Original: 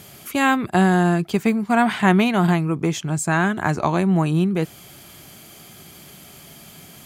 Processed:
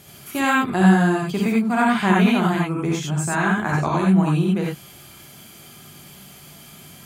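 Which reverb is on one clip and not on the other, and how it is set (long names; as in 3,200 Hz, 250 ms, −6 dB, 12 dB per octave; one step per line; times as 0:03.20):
reverb whose tail is shaped and stops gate 110 ms rising, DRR −3 dB
level −5 dB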